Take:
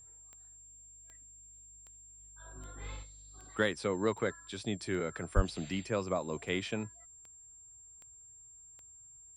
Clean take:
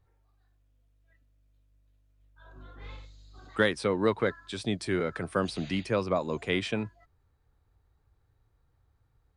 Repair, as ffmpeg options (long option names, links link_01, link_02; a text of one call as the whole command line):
ffmpeg -i in.wav -filter_complex "[0:a]adeclick=threshold=4,bandreject=frequency=7400:width=30,asplit=3[link_01][link_02][link_03];[link_01]afade=type=out:start_time=5.35:duration=0.02[link_04];[link_02]highpass=frequency=140:width=0.5412,highpass=frequency=140:width=1.3066,afade=type=in:start_time=5.35:duration=0.02,afade=type=out:start_time=5.47:duration=0.02[link_05];[link_03]afade=type=in:start_time=5.47:duration=0.02[link_06];[link_04][link_05][link_06]amix=inputs=3:normalize=0,asetnsamples=nb_out_samples=441:pad=0,asendcmd='3.03 volume volume 5.5dB',volume=0dB" out.wav